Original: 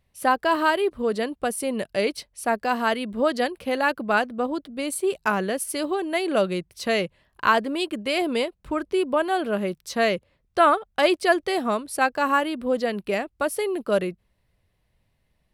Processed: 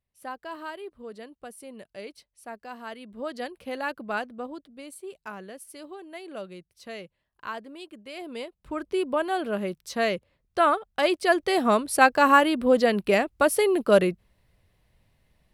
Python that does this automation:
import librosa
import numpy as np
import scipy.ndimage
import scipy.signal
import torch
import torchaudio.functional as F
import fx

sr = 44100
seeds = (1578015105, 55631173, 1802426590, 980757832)

y = fx.gain(x, sr, db=fx.line((2.82, -16.5), (3.58, -8.5), (4.27, -8.5), (5.03, -16.0), (8.11, -16.0), (8.9, -3.5), (11.15, -3.5), (11.78, 4.0)))